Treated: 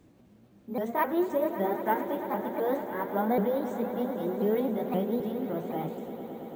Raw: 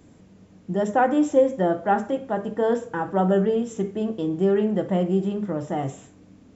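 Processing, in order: repeated pitch sweeps +4.5 st, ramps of 0.26 s; careless resampling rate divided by 3×, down filtered, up hold; swelling echo 0.111 s, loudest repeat 5, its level -15 dB; gain -6.5 dB

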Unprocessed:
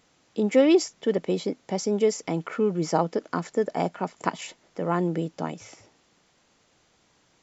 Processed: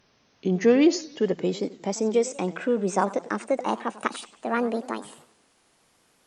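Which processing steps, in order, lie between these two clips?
speed glide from 81% -> 156%; warbling echo 94 ms, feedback 43%, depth 215 cents, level -17 dB

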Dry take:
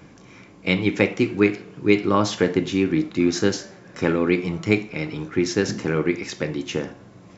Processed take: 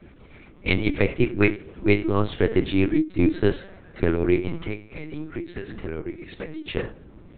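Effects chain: 4.59–6.73 compressor 12:1, threshold -27 dBFS, peak gain reduction 16 dB; rotary speaker horn 8 Hz, later 1 Hz, at 0.94; LPC vocoder at 8 kHz pitch kept; gain +1 dB

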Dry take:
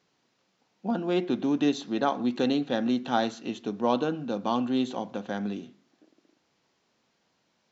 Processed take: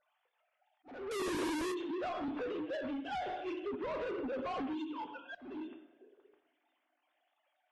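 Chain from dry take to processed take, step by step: sine-wave speech; 2.28–3.07 three-band isolator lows -17 dB, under 480 Hz, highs -21 dB, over 2600 Hz; two-slope reverb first 0.65 s, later 2.3 s, from -27 dB, DRR 3.5 dB; compressor 4:1, threshold -26 dBFS, peak gain reduction 8.5 dB; limiter -25 dBFS, peak gain reduction 6.5 dB; 1.11–1.72 Schmitt trigger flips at -49.5 dBFS; 4.73–5.35 fixed phaser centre 2900 Hz, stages 8; soft clip -35 dBFS, distortion -11 dB; auto swell 0.37 s; AAC 32 kbps 32000 Hz

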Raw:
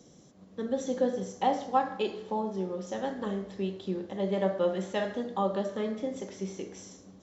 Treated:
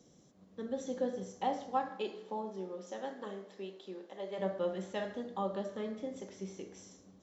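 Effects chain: 1.89–4.38 HPF 170 Hz -> 480 Hz 12 dB/oct; gain -7 dB

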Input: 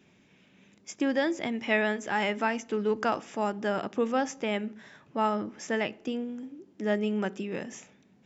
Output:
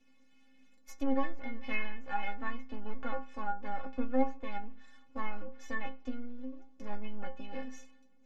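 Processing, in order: half-wave rectifier; metallic resonator 260 Hz, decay 0.26 s, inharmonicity 0.008; treble ducked by the level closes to 1900 Hz, closed at -36 dBFS; gain +8.5 dB

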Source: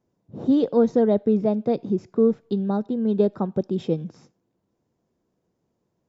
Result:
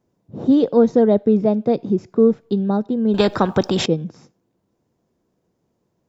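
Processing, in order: 3.14–3.86 spectral compressor 2:1; gain +4.5 dB

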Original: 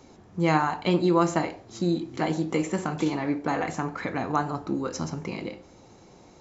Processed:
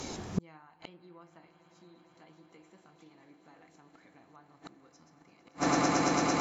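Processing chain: high shelf 2300 Hz +9.5 dB; swelling echo 0.112 s, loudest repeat 8, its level -17.5 dB; in parallel at +1.5 dB: compressor 4:1, threshold -38 dBFS, peak gain reduction 19 dB; on the sum: treble ducked by the level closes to 2900 Hz, closed at -16 dBFS; flipped gate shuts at -18 dBFS, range -38 dB; gain +3 dB

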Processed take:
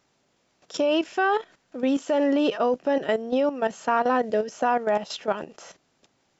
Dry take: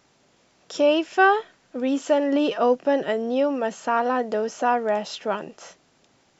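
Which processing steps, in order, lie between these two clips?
spectral gain 4.24–4.51, 650–1500 Hz -8 dB; level quantiser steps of 12 dB; gain +3 dB

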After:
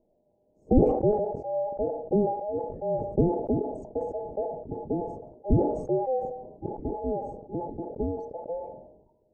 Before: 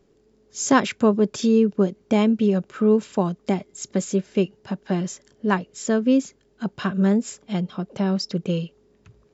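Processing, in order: band inversion scrambler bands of 1000 Hz; inverse Chebyshev low-pass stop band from 1400 Hz, stop band 60 dB; on a send at -14 dB: reverb RT60 0.65 s, pre-delay 3 ms; on the sum: sustainer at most 59 dB/s; gain +5 dB

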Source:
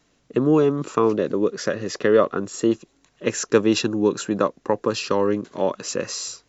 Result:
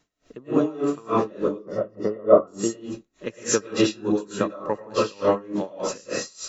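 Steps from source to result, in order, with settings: 1.47–2.47 polynomial smoothing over 65 samples; reverb RT60 0.35 s, pre-delay 75 ms, DRR -9 dB; dB-linear tremolo 3.4 Hz, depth 26 dB; gain -4 dB

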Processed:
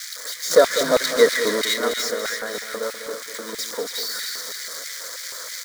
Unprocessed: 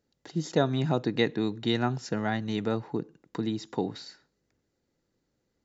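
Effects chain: switching spikes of -18 dBFS; bell 2900 Hz +9 dB 2.9 oct; 0.51–1.74 sample leveller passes 3; high shelf 5400 Hz -10 dB; fixed phaser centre 540 Hz, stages 8; echo with dull and thin repeats by turns 0.14 s, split 2000 Hz, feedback 69%, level -3 dB; LFO high-pass square 3.1 Hz 470–2200 Hz; echo 0.198 s -11.5 dB

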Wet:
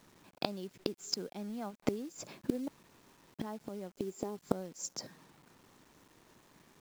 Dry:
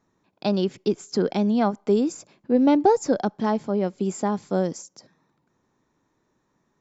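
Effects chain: 3.93–4.37 fifteen-band EQ 100 Hz -8 dB, 400 Hz +9 dB, 1600 Hz -6 dB; flipped gate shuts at -22 dBFS, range -26 dB; 2.68–3.34 room tone; companded quantiser 6-bit; gain +6 dB

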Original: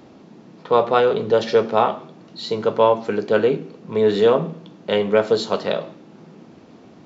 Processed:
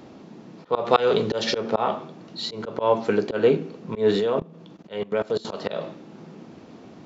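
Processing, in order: 0.85–1.58 high shelf 2400 Hz +8 dB; 4.11–5.45 level quantiser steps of 23 dB; auto swell 0.172 s; gain +1 dB

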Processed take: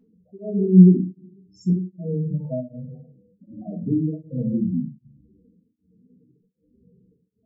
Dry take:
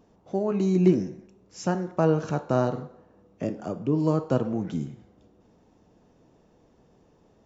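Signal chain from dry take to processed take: harmonic-percussive split harmonic +6 dB; limiter -9.5 dBFS, peak gain reduction 7.5 dB; loudest bins only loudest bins 4; 1.7–2.45 running mean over 58 samples; shoebox room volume 210 m³, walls furnished, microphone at 1.5 m; beating tremolo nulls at 1.3 Hz; gain -2 dB

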